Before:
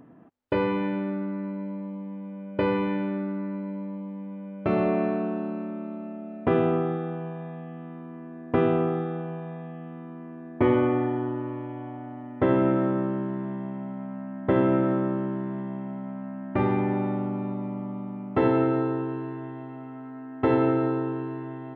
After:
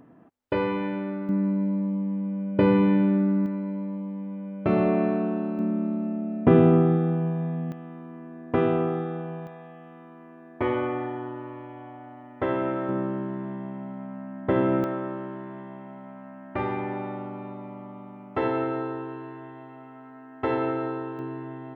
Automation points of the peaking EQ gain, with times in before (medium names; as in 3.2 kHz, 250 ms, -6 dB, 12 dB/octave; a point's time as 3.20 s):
peaking EQ 180 Hz 2 oct
-2 dB
from 1.29 s +9 dB
from 3.46 s +3 dB
from 5.59 s +10 dB
from 7.72 s -1 dB
from 9.47 s -10.5 dB
from 12.89 s -2 dB
from 14.84 s -10 dB
from 21.19 s -2 dB